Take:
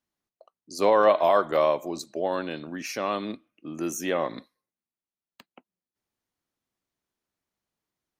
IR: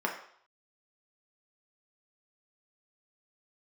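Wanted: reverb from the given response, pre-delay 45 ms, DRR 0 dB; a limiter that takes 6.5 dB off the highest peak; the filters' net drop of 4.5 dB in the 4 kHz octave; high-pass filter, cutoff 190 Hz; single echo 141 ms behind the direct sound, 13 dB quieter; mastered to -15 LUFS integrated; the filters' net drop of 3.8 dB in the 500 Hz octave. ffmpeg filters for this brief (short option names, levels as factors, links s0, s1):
-filter_complex "[0:a]highpass=190,equalizer=f=500:t=o:g=-4.5,equalizer=f=4000:t=o:g=-6,alimiter=limit=0.133:level=0:latency=1,aecho=1:1:141:0.224,asplit=2[s0][s1];[1:a]atrim=start_sample=2205,adelay=45[s2];[s1][s2]afir=irnorm=-1:irlink=0,volume=0.376[s3];[s0][s3]amix=inputs=2:normalize=0,volume=4.47"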